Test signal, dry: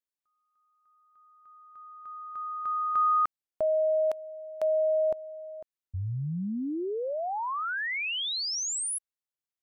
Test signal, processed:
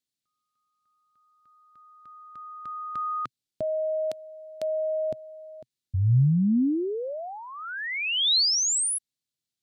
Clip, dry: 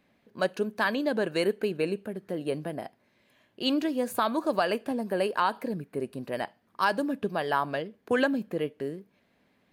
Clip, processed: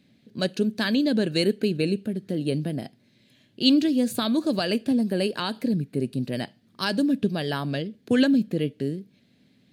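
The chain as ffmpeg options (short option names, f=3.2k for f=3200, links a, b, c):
-af "equalizer=f=125:t=o:w=1:g=12,equalizer=f=250:t=o:w=1:g=8,equalizer=f=1k:t=o:w=1:g=-10,equalizer=f=4k:t=o:w=1:g=10,equalizer=f=8k:t=o:w=1:g=5"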